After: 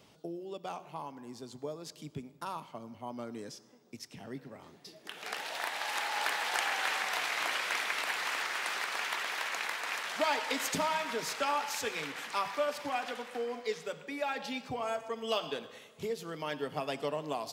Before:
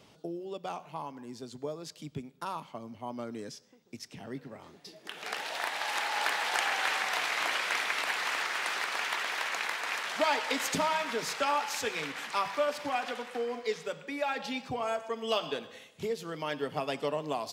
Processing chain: treble shelf 11 kHz +5.5 dB; reverberation RT60 2.5 s, pre-delay 63 ms, DRR 19 dB; trim -2.5 dB

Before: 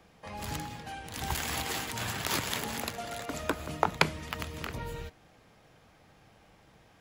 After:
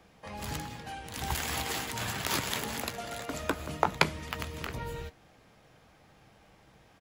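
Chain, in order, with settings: doubling 15 ms -14 dB

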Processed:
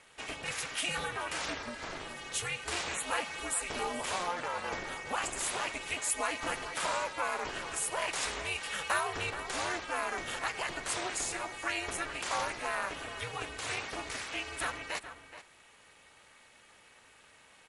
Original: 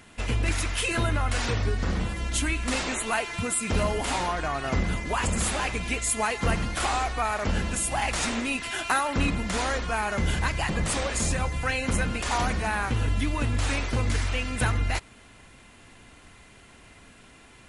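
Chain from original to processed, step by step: Bessel high-pass 490 Hz, order 2; ring modulator 180 Hz; echo from a far wall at 73 m, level -11 dB; trim -2.5 dB

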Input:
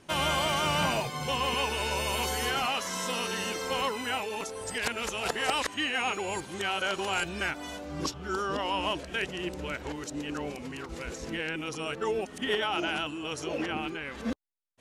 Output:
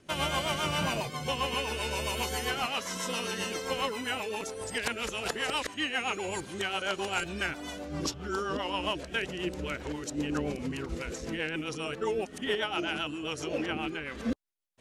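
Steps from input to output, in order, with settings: rotary cabinet horn 7.5 Hz; in parallel at -2 dB: gain riding within 3 dB 0.5 s; 10.18–10.98 s: on the sum: bass shelf 340 Hz +6 dB; trim -4 dB

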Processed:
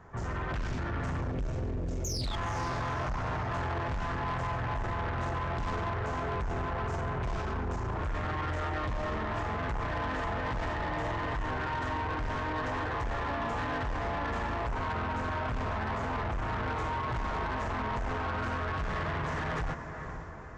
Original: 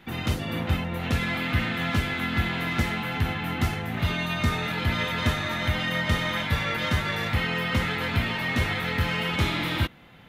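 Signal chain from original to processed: speed mistake 15 ips tape played at 7.5 ips; treble shelf 5.6 kHz -9 dB; painted sound fall, 2.04–2.36 s, 3.2–6.9 kHz -34 dBFS; level rider gain up to 4 dB; spectral selection erased 1.32–2.26 s, 650–2100 Hz; peak limiter -20.5 dBFS, peak gain reduction 14 dB; on a send: echo that smears into a reverb 493 ms, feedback 41%, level -12 dB; on the sum: saturation -29 dBFS, distortion -11 dB; loudspeaker Doppler distortion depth 0.22 ms

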